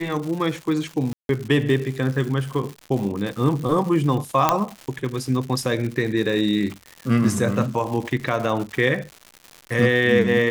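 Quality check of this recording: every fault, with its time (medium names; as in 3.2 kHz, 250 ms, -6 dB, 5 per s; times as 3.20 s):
crackle 210 per s -29 dBFS
1.13–1.29 s: dropout 162 ms
4.49 s: pop -2 dBFS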